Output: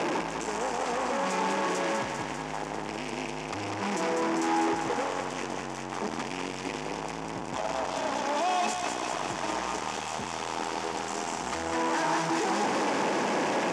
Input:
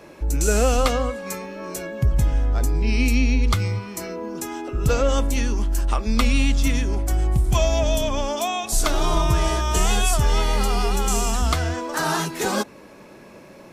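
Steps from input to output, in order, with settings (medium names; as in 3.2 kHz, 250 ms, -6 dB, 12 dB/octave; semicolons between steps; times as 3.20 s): one-bit comparator; tilt shelf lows +6.5 dB; saturation -19.5 dBFS, distortion -17 dB; cabinet simulation 320–7400 Hz, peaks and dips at 380 Hz -3 dB, 580 Hz -6 dB, 860 Hz +5 dB, 1.3 kHz -4 dB, 4 kHz -6 dB; on a send: thinning echo 198 ms, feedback 77%, high-pass 760 Hz, level -4 dB; on the sum: trim -3 dB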